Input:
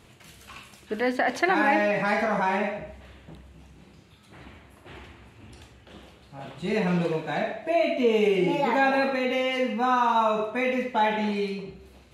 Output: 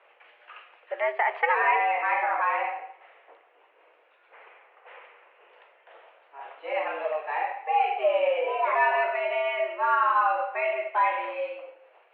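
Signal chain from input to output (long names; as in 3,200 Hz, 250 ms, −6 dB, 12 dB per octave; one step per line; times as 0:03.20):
single-sideband voice off tune +140 Hz 380–2,500 Hz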